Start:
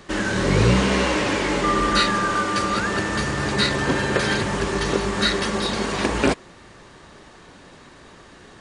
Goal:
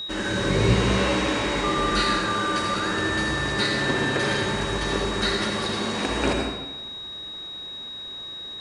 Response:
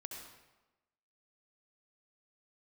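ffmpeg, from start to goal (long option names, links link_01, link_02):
-filter_complex "[0:a]aeval=exprs='val(0)+0.0631*sin(2*PI*3800*n/s)':channel_layout=same[link_01];[1:a]atrim=start_sample=2205[link_02];[link_01][link_02]afir=irnorm=-1:irlink=0"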